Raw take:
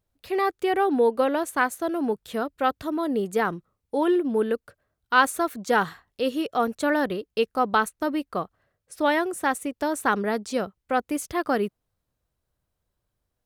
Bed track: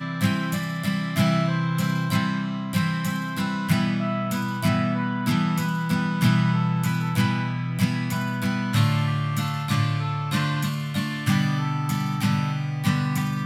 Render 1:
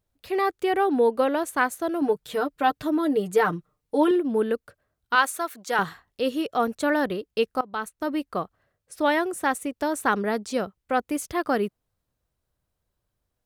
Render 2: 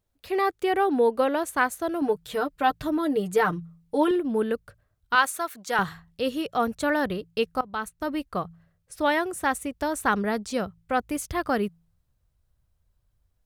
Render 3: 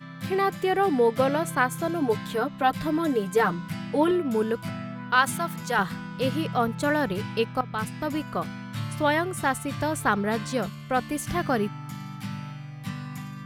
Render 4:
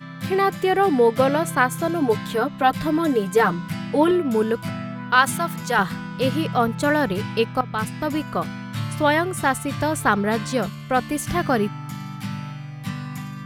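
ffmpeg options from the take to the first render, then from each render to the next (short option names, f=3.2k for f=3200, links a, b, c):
-filter_complex "[0:a]asettb=1/sr,asplit=3[a][b][c];[a]atrim=end=2.014[d];[b]atrim=start=2.01:end=4.11,asetpts=PTS-STARTPTS,afade=t=in:d=0.004:c=qsin,afade=t=out:st=2.096:d=0.004:c=qsin,aecho=1:1:6.6:0.77,atrim=end_sample=92610[e];[c]atrim=start=4.106[f];[d][e]acrossfade=d=0.004:c1=hsin:c2=qsin[g];[g][f]acrossfade=d=0.004:c1=qsin:c2=hsin,asettb=1/sr,asplit=3[h][i][j];[h]atrim=end=5.154[k];[i]atrim=start=5.15:end=5.79,asetpts=PTS-STARTPTS,afade=t=in:d=0.004:c=qsin,afade=t=out:st=0.636:d=0.004:c=qsin,highpass=f=840:p=1[l];[j]atrim=start=5.786[m];[k][l]acrossfade=d=0.004:c1=hsin:c2=qsin[n];[n][m]acrossfade=d=0.004:c1=qsin:c2=hsin,asplit=2[o][p];[o]atrim=end=7.61,asetpts=PTS-STARTPTS,afade=t=out:st=7.606:d=0.004:c=hsin:silence=0.0891251[q];[p]atrim=start=7.61,asetpts=PTS-STARTPTS,afade=t=in:d=0.57:silence=0.0891251[r];[q][r]concat=n=2:v=0:a=1"
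-af "bandreject=f=55.54:t=h:w=4,bandreject=f=111.08:t=h:w=4,bandreject=f=166.62:t=h:w=4,asubboost=boost=4:cutoff=140"
-filter_complex "[1:a]volume=-12dB[a];[0:a][a]amix=inputs=2:normalize=0"
-af "volume=4.5dB"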